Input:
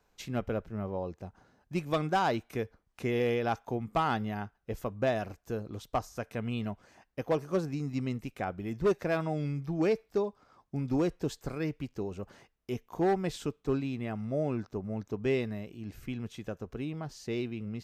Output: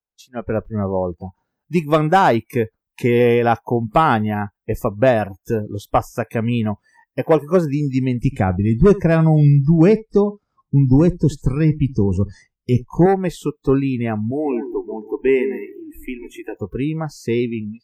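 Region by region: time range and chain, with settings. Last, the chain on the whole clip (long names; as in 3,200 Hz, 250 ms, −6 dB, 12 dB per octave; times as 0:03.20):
0:08.21–0:13.06: low-pass filter 9,000 Hz + bass and treble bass +12 dB, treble +5 dB + single-tap delay 75 ms −18 dB
0:14.31–0:16.55: parametric band 91 Hz −7 dB 0.7 octaves + phaser with its sweep stopped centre 860 Hz, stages 8 + feedback echo with a low-pass in the loop 138 ms, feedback 38%, low-pass 960 Hz, level −7 dB
whole clip: automatic gain control gain up to 15 dB; dynamic equaliser 4,600 Hz, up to −8 dB, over −42 dBFS, Q 1; noise reduction from a noise print of the clip's start 27 dB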